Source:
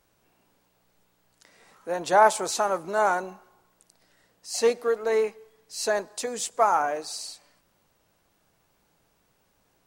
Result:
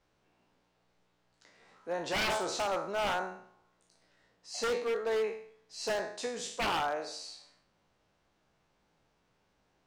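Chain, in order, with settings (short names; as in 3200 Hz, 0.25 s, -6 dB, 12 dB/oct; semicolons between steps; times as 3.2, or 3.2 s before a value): spectral trails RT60 0.57 s; LPF 5200 Hz 12 dB/oct; wavefolder -19 dBFS; gain -6.5 dB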